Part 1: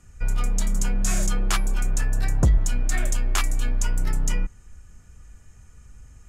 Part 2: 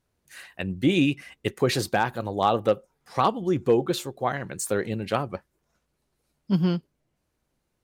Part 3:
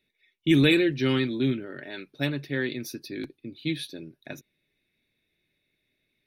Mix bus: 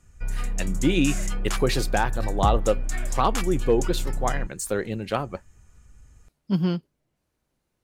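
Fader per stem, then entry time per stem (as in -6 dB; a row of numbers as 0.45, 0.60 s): -5.0 dB, -0.5 dB, off; 0.00 s, 0.00 s, off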